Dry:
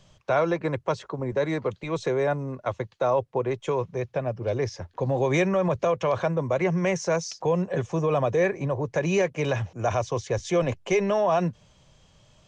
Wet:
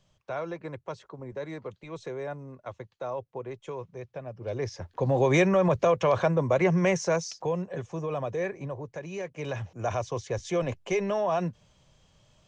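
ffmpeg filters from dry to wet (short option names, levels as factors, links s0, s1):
-af "volume=3.76,afade=t=in:st=4.3:d=0.88:silence=0.251189,afade=t=out:st=6.81:d=0.88:silence=0.354813,afade=t=out:st=8.65:d=0.45:silence=0.446684,afade=t=in:st=9.1:d=0.71:silence=0.298538"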